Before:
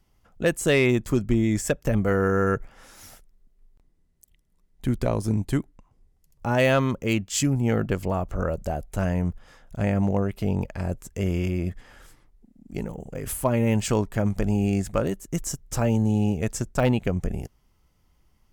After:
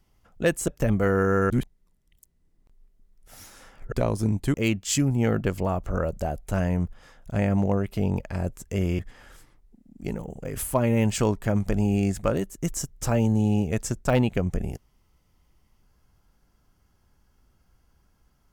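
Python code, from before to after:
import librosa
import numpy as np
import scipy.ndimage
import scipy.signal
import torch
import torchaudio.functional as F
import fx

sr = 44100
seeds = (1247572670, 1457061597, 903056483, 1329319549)

y = fx.edit(x, sr, fx.cut(start_s=0.68, length_s=1.05),
    fx.reverse_span(start_s=2.55, length_s=2.42),
    fx.cut(start_s=5.59, length_s=1.4),
    fx.cut(start_s=11.44, length_s=0.25), tone=tone)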